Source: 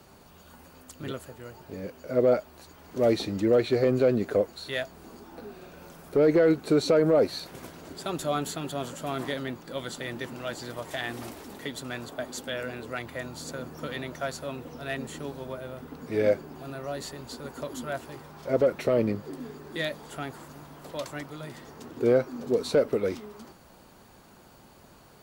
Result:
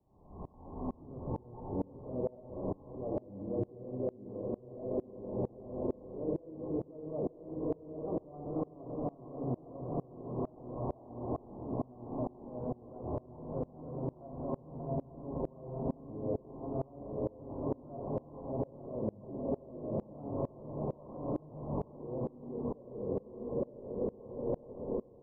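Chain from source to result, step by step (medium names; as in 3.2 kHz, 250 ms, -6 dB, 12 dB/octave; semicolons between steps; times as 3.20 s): echo that smears into a reverb 932 ms, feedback 54%, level -11 dB; compression, threshold -37 dBFS, peak gain reduction 18.5 dB; tilt EQ -2.5 dB/octave; peak limiter -40.5 dBFS, peak gain reduction 18.5 dB; rippled Chebyshev low-pass 1.1 kHz, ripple 3 dB; peaking EQ 180 Hz -3.5 dB 2.1 oct; reverberation RT60 3.5 s, pre-delay 10 ms, DRR 0.5 dB; level rider gain up to 14 dB; sawtooth tremolo in dB swelling 2.2 Hz, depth 27 dB; trim +3 dB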